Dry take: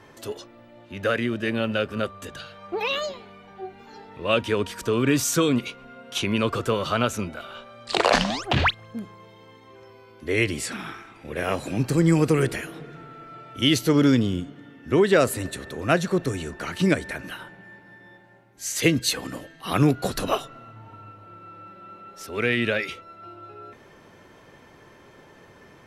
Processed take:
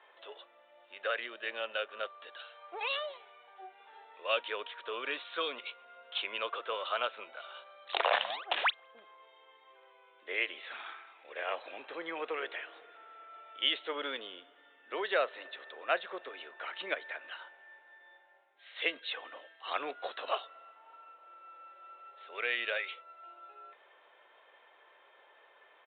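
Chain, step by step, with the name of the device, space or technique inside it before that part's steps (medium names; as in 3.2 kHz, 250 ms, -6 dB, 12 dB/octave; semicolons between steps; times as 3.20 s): musical greeting card (resampled via 8 kHz; high-pass 550 Hz 24 dB/octave; peaking EQ 3.9 kHz +4.5 dB 0.52 oct); trim -8 dB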